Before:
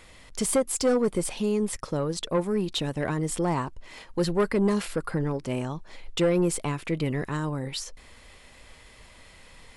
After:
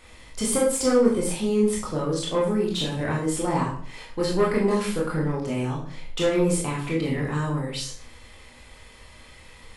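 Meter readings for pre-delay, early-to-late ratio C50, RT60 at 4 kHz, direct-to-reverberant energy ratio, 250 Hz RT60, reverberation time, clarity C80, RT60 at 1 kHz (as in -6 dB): 18 ms, 4.5 dB, 0.40 s, -4.0 dB, 0.55 s, 0.50 s, 9.5 dB, 0.45 s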